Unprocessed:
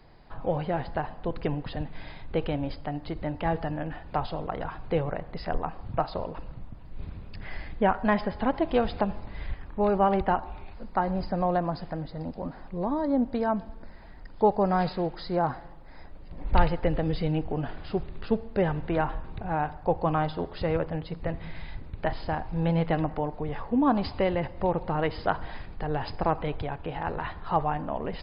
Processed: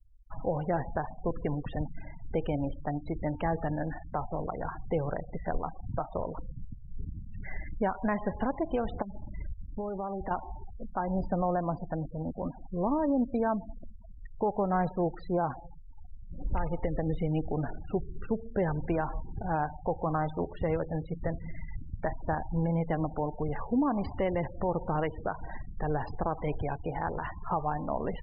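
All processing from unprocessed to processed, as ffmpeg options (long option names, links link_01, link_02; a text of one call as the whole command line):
ffmpeg -i in.wav -filter_complex "[0:a]asettb=1/sr,asplit=3[link_01][link_02][link_03];[link_01]atrim=end=9.024[link_04];[link_02]atrim=start=9.02:end=10.31,asetpts=PTS-STARTPTS,afade=type=in:duration=0.004:curve=qsin,afade=type=out:start_time=1.286:duration=0.004:curve=qsin,highshelf=frequency=3100:gain=-8,acompressor=threshold=-31dB:ratio=10:attack=3.2:release=140:knee=1:detection=peak[link_05];[link_03]atrim=start=10.306[link_06];[link_04][link_05]acrossfade=duration=0.004:curve1=hsin:curve2=qsin[link_07];[link_07][link_06]acrossfade=duration=0.004:curve1=qsin:curve2=hsin,acrossover=split=3400[link_08][link_09];[link_09]acompressor=threshold=-58dB:ratio=4:attack=1:release=60[link_10];[link_08][link_10]amix=inputs=2:normalize=0,alimiter=limit=-19.5dB:level=0:latency=1:release=211,afftfilt=real='re*gte(hypot(re,im),0.0158)':imag='im*gte(hypot(re,im),0.0158)':win_size=1024:overlap=0.75" out.wav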